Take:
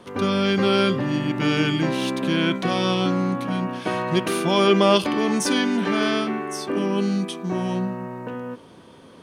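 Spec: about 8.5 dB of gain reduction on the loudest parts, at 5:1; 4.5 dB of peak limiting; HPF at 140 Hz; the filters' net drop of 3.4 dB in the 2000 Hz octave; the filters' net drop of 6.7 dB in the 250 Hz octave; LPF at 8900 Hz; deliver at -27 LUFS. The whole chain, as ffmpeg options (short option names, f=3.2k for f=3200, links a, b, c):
-af "highpass=140,lowpass=8.9k,equalizer=f=250:t=o:g=-8.5,equalizer=f=2k:t=o:g=-4.5,acompressor=threshold=-24dB:ratio=5,volume=3dB,alimiter=limit=-16dB:level=0:latency=1"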